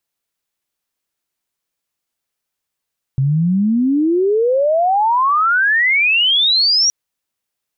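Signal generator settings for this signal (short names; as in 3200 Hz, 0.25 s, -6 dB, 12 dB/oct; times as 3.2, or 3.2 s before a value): chirp logarithmic 130 Hz -> 5800 Hz -12 dBFS -> -10.5 dBFS 3.72 s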